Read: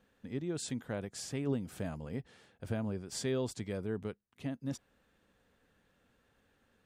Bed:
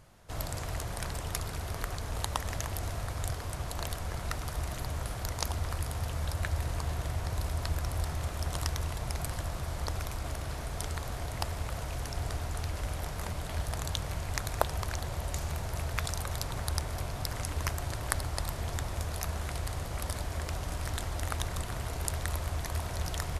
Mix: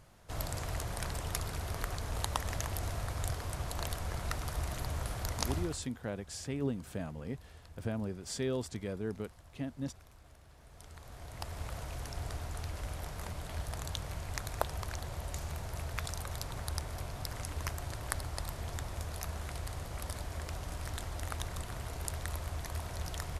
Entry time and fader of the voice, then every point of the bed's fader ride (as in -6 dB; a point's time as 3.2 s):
5.15 s, -0.5 dB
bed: 5.58 s -1.5 dB
5.92 s -22 dB
10.53 s -22 dB
11.63 s -5 dB